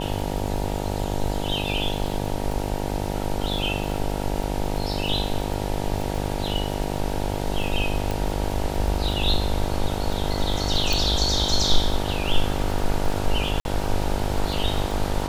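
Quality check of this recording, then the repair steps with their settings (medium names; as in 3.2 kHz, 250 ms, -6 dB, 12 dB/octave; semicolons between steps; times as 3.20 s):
buzz 50 Hz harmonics 19 -28 dBFS
crackle 43 per s -29 dBFS
8.11 s: pop
10.93 s: pop
13.60–13.65 s: dropout 51 ms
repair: de-click; de-hum 50 Hz, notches 19; interpolate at 13.60 s, 51 ms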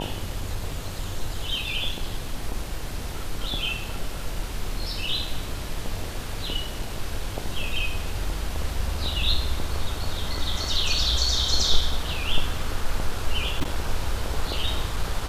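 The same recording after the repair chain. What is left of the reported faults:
10.93 s: pop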